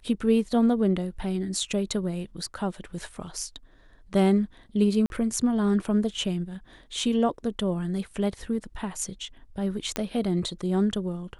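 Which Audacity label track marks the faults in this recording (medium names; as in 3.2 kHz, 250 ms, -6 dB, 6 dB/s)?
5.060000	5.100000	dropout 41 ms
9.960000	9.960000	pop -11 dBFS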